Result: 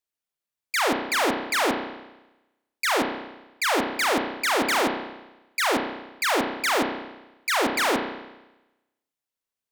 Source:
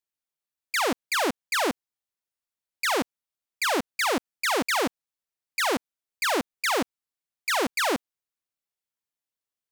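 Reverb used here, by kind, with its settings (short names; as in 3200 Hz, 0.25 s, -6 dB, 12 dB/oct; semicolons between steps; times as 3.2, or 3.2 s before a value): spring tank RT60 1 s, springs 32 ms, chirp 20 ms, DRR 3.5 dB; gain +1 dB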